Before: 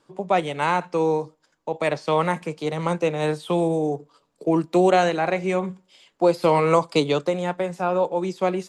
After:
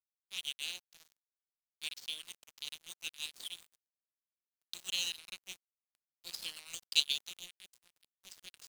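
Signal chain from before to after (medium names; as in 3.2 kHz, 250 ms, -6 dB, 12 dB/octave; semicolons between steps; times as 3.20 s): elliptic high-pass 2.9 kHz, stop band 40 dB; crossover distortion -42.5 dBFS; trim +4 dB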